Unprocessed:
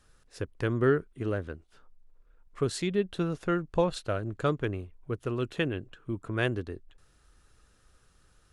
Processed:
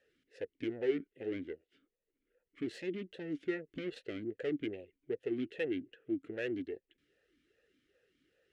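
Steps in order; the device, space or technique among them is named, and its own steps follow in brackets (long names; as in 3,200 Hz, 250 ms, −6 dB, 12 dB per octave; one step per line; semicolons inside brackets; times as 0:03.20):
talk box (tube saturation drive 32 dB, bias 0.7; formant filter swept between two vowels e-i 2.5 Hz)
level +10.5 dB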